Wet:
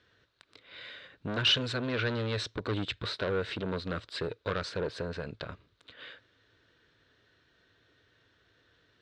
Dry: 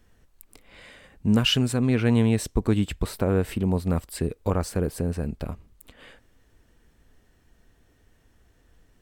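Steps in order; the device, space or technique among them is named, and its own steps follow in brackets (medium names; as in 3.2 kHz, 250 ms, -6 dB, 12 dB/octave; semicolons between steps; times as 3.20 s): guitar amplifier (valve stage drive 26 dB, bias 0.65; tone controls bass -8 dB, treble +8 dB; cabinet simulation 95–4200 Hz, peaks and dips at 110 Hz +8 dB, 220 Hz -8 dB, 790 Hz -9 dB, 1.5 kHz +7 dB, 3.8 kHz +8 dB); trim +2.5 dB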